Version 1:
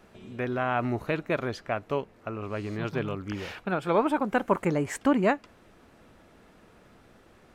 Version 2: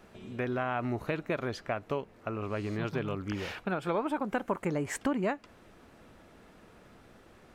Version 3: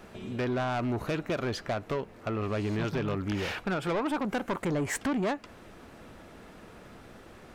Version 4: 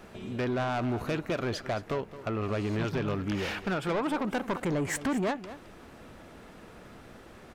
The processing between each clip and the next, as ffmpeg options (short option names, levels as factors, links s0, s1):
-af "acompressor=threshold=0.0355:ratio=3"
-af "asoftclip=type=tanh:threshold=0.0266,volume=2.11"
-af "aecho=1:1:218:0.188"